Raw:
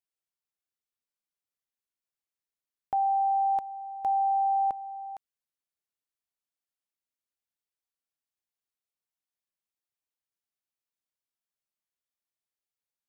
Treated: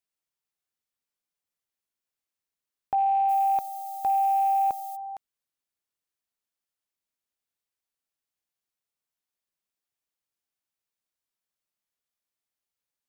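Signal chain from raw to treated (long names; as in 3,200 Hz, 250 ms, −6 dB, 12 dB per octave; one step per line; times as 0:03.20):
loose part that buzzes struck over −54 dBFS, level −45 dBFS
0:03.28–0:04.95: background noise violet −50 dBFS
level +2.5 dB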